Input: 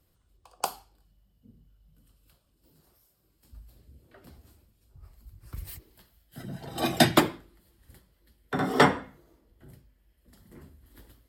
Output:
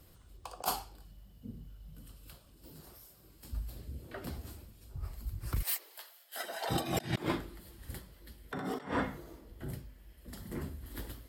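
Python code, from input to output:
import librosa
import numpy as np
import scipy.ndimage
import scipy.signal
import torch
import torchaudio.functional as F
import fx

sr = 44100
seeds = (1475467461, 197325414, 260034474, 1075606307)

y = fx.highpass(x, sr, hz=570.0, slope=24, at=(5.61, 6.69), fade=0.02)
y = fx.over_compress(y, sr, threshold_db=-38.0, ratio=-1.0)
y = y * 10.0 ** (1.5 / 20.0)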